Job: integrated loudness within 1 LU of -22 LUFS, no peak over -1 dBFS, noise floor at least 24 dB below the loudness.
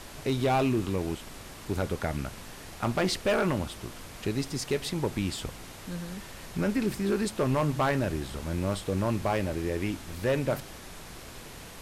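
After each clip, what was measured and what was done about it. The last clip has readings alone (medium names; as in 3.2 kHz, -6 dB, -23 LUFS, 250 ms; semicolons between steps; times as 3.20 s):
clipped samples 1.2%; clipping level -20.0 dBFS; noise floor -45 dBFS; noise floor target -54 dBFS; loudness -30.0 LUFS; peak level -20.0 dBFS; loudness target -22.0 LUFS
-> clip repair -20 dBFS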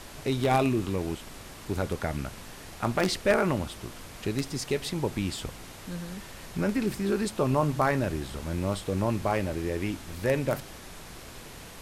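clipped samples 0.0%; noise floor -45 dBFS; noise floor target -54 dBFS
-> noise print and reduce 9 dB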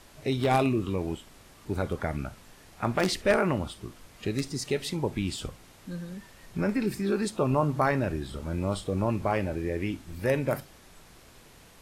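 noise floor -54 dBFS; loudness -29.5 LUFS; peak level -11.0 dBFS; loudness target -22.0 LUFS
-> trim +7.5 dB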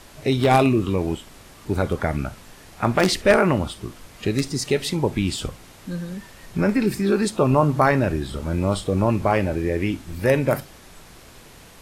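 loudness -22.0 LUFS; peak level -3.5 dBFS; noise floor -46 dBFS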